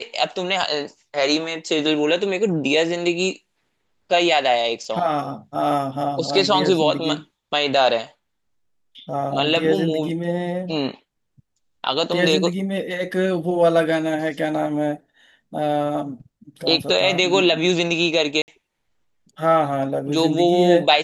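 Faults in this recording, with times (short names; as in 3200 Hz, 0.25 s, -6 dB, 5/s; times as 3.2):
18.42–18.48 gap 59 ms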